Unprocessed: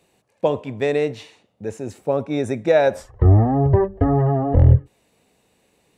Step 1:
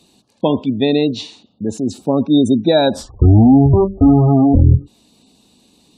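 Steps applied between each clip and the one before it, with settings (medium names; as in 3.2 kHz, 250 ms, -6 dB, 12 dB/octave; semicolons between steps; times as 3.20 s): graphic EQ 125/250/500/2000/4000 Hz -4/+10/-9/-12/+11 dB; spectral gate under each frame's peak -30 dB strong; loudness maximiser +9 dB; trim -1 dB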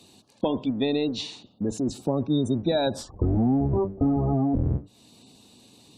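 octave divider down 1 oct, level -3 dB; bass shelf 100 Hz -11 dB; compression 2.5:1, threshold -26 dBFS, peak gain reduction 13 dB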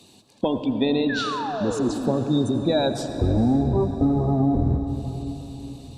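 painted sound fall, 1.09–2.12 s, 210–1800 Hz -31 dBFS; echo that smears into a reverb 485 ms, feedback 51%, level -16 dB; on a send at -8 dB: reverberation RT60 3.7 s, pre-delay 78 ms; on the sum: trim +2 dB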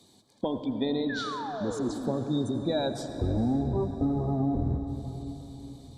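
Butterworth band-stop 2.7 kHz, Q 4.4; trim -7 dB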